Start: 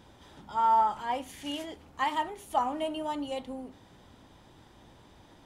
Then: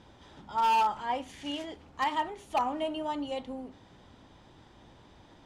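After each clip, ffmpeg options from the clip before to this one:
ffmpeg -i in.wav -af "lowpass=6700,aeval=exprs='0.1*(abs(mod(val(0)/0.1+3,4)-2)-1)':channel_layout=same" out.wav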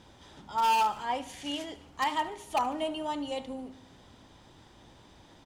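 ffmpeg -i in.wav -af "aemphasis=mode=production:type=cd,aecho=1:1:73|146|219|292|365:0.126|0.073|0.0424|0.0246|0.0142" out.wav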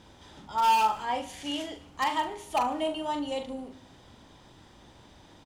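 ffmpeg -i in.wav -filter_complex "[0:a]asplit=2[link_01][link_02];[link_02]adelay=41,volume=-7.5dB[link_03];[link_01][link_03]amix=inputs=2:normalize=0,volume=1dB" out.wav

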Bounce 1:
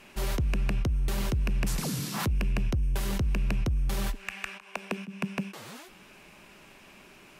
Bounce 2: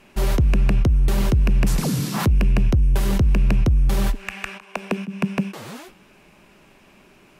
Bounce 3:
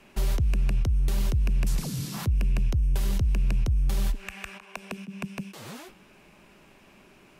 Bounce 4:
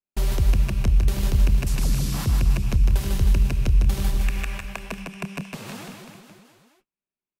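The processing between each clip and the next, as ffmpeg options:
ffmpeg -i in.wav -af "agate=range=-7dB:threshold=-50dB:ratio=16:detection=peak,tiltshelf=frequency=970:gain=3,volume=7.5dB" out.wav
ffmpeg -i in.wav -filter_complex "[0:a]acrossover=split=120|2700|6000[link_01][link_02][link_03][link_04];[link_01]acompressor=threshold=-18dB:ratio=4[link_05];[link_02]acompressor=threshold=-35dB:ratio=4[link_06];[link_03]acompressor=threshold=-41dB:ratio=4[link_07];[link_04]acompressor=threshold=-39dB:ratio=4[link_08];[link_05][link_06][link_07][link_08]amix=inputs=4:normalize=0,volume=-3dB" out.wav
ffmpeg -i in.wav -af "agate=range=-49dB:threshold=-45dB:ratio=16:detection=peak,aecho=1:1:150|315|496.5|696.2|915.8:0.631|0.398|0.251|0.158|0.1,volume=3dB" out.wav

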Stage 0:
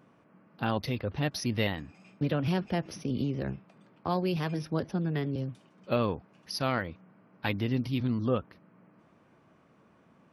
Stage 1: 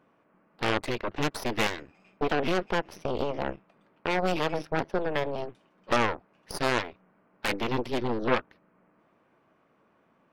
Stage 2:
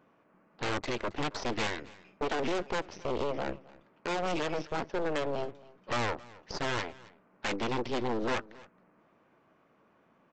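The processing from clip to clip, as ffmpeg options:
ffmpeg -i in.wav -af "aeval=exprs='0.224*(cos(1*acos(clip(val(0)/0.224,-1,1)))-cos(1*PI/2))+0.0355*(cos(3*acos(clip(val(0)/0.224,-1,1)))-cos(3*PI/2))+0.0447*(cos(4*acos(clip(val(0)/0.224,-1,1)))-cos(4*PI/2))+0.1*(cos(6*acos(clip(val(0)/0.224,-1,1)))-cos(6*PI/2))+0.112*(cos(8*acos(clip(val(0)/0.224,-1,1)))-cos(8*PI/2))':channel_layout=same,bass=frequency=250:gain=-9,treble=frequency=4000:gain=-8,volume=4dB" out.wav
ffmpeg -i in.wav -af "aresample=16000,asoftclip=type=hard:threshold=-27dB,aresample=44100,aecho=1:1:270:0.0841" out.wav

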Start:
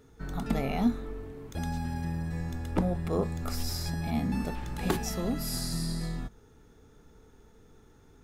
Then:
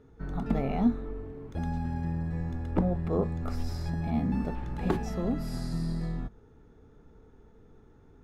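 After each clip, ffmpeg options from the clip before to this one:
ffmpeg -i in.wav -af "lowpass=frequency=1100:poles=1,volume=1.5dB" out.wav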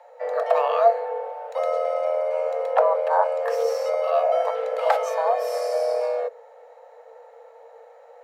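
ffmpeg -i in.wav -af "afreqshift=450,volume=7.5dB" out.wav

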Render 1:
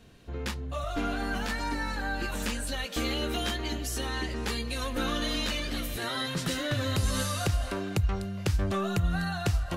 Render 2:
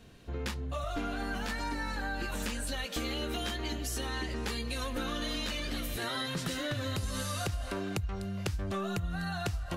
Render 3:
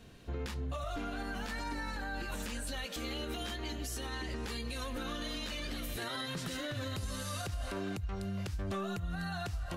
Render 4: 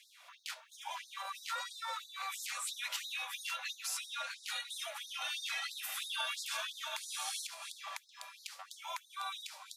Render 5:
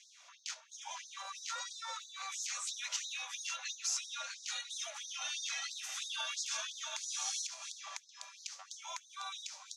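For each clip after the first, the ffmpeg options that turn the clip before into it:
ffmpeg -i in.wav -af "acompressor=threshold=-31dB:ratio=6" out.wav
ffmpeg -i in.wav -af "alimiter=level_in=5.5dB:limit=-24dB:level=0:latency=1:release=106,volume=-5.5dB" out.wav
ffmpeg -i in.wav -af "afreqshift=-410,afftfilt=real='re*gte(b*sr/1024,490*pow(3700/490,0.5+0.5*sin(2*PI*3*pts/sr)))':imag='im*gte(b*sr/1024,490*pow(3700/490,0.5+0.5*sin(2*PI*3*pts/sr)))':win_size=1024:overlap=0.75,volume=4.5dB" out.wav
ffmpeg -i in.wav -af "lowpass=frequency=6300:width_type=q:width=4.9,volume=-4dB" out.wav

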